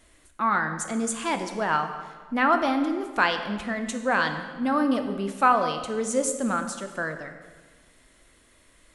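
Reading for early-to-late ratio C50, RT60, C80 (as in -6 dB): 8.5 dB, 1.5 s, 10.0 dB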